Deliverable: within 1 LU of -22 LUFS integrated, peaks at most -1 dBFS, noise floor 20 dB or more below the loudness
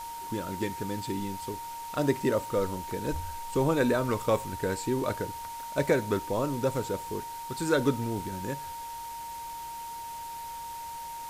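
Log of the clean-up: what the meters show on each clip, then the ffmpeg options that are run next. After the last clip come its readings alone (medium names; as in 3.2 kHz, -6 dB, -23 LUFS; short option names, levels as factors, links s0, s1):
steady tone 930 Hz; tone level -37 dBFS; noise floor -40 dBFS; noise floor target -52 dBFS; loudness -31.5 LUFS; peak level -12.0 dBFS; loudness target -22.0 LUFS
-> -af "bandreject=f=930:w=30"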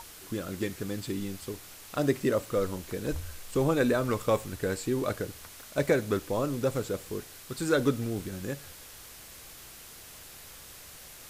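steady tone not found; noise floor -48 dBFS; noise floor target -51 dBFS
-> -af "afftdn=nr=6:nf=-48"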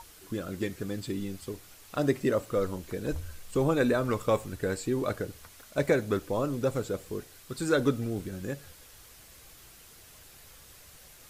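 noise floor -53 dBFS; loudness -31.0 LUFS; peak level -12.0 dBFS; loudness target -22.0 LUFS
-> -af "volume=2.82"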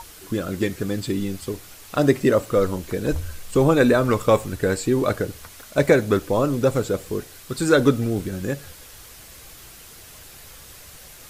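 loudness -22.0 LUFS; peak level -3.0 dBFS; noise floor -44 dBFS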